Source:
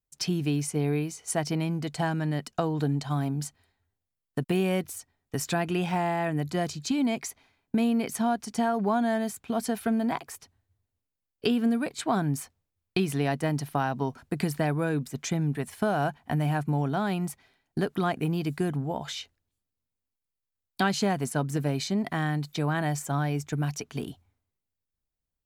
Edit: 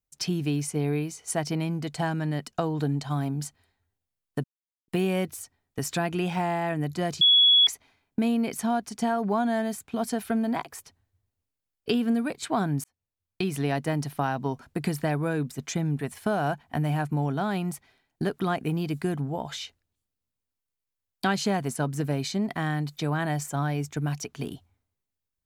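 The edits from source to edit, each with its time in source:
0:04.44: splice in silence 0.44 s
0:06.77–0:07.23: beep over 3,370 Hz −14.5 dBFS
0:12.40–0:13.17: fade in

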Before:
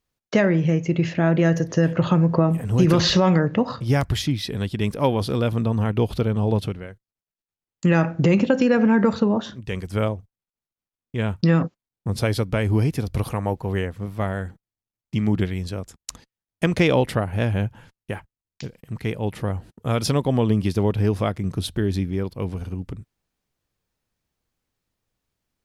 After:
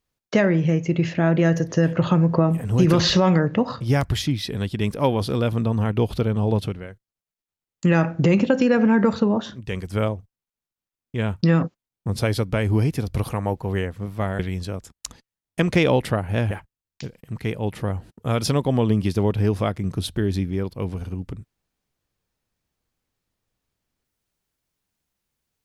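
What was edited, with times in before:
0:14.39–0:15.43: remove
0:17.55–0:18.11: remove

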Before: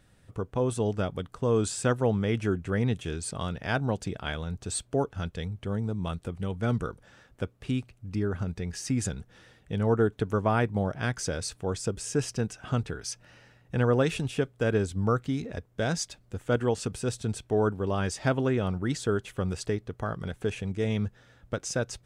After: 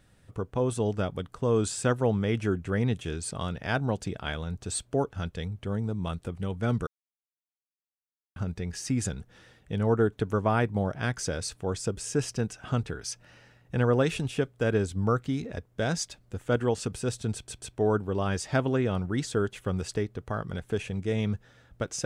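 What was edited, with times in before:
0:06.87–0:08.36: silence
0:17.34: stutter 0.14 s, 3 plays

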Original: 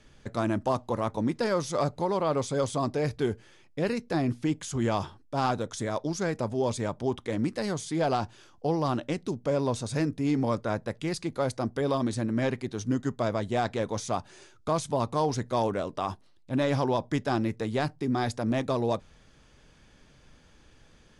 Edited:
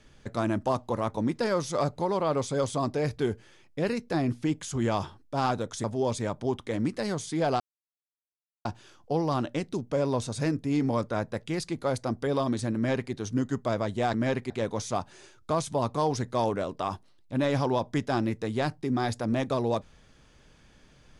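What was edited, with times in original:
0:05.84–0:06.43: remove
0:08.19: splice in silence 1.05 s
0:12.30–0:12.66: duplicate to 0:13.68

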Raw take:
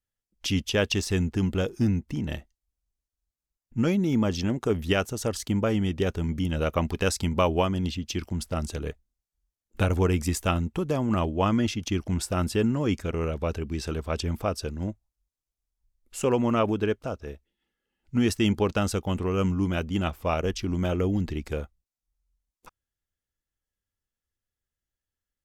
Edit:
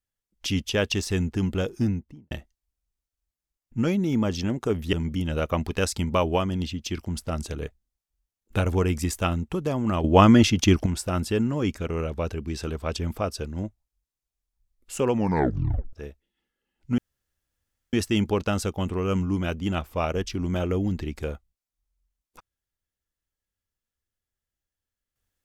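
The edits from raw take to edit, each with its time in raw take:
0:01.77–0:02.31: fade out and dull
0:04.93–0:06.17: remove
0:11.28–0:12.10: clip gain +9 dB
0:16.37: tape stop 0.80 s
0:18.22: splice in room tone 0.95 s

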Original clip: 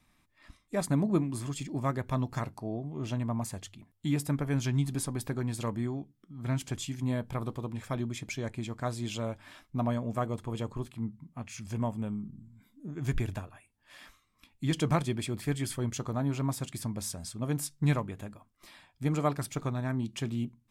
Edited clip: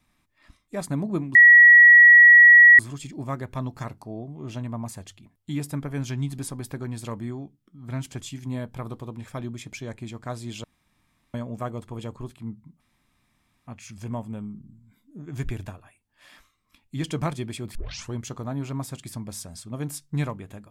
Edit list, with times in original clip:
0:01.35: insert tone 1,920 Hz −7.5 dBFS 1.44 s
0:09.20–0:09.90: fill with room tone
0:11.36: splice in room tone 0.87 s
0:15.44: tape start 0.38 s

